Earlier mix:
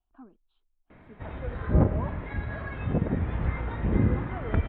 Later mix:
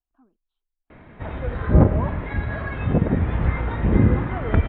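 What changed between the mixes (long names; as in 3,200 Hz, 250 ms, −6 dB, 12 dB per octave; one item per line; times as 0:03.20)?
speech −9.5 dB
background +7.0 dB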